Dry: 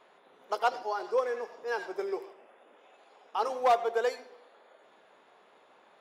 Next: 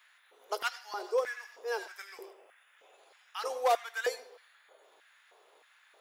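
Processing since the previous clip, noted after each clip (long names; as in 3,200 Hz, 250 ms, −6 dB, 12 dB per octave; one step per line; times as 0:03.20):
auto-filter high-pass square 1.6 Hz 410–1,700 Hz
RIAA equalisation recording
level −5 dB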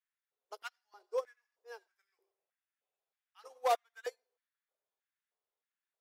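expander for the loud parts 2.5 to 1, over −45 dBFS
level −2 dB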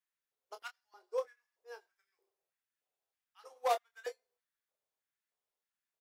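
double-tracking delay 25 ms −8.5 dB
level −1.5 dB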